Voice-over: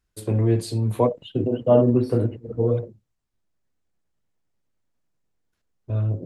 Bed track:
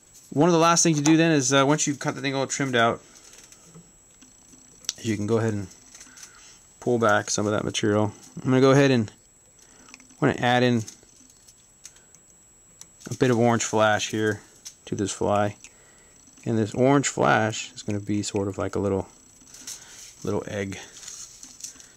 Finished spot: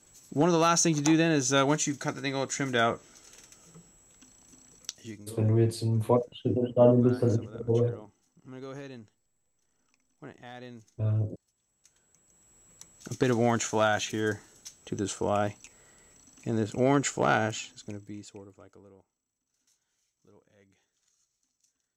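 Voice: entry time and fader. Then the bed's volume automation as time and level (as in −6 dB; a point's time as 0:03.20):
5.10 s, −4.0 dB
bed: 0:04.75 −5 dB
0:05.37 −24.5 dB
0:11.46 −24.5 dB
0:12.59 −5 dB
0:17.56 −5 dB
0:19.03 −33 dB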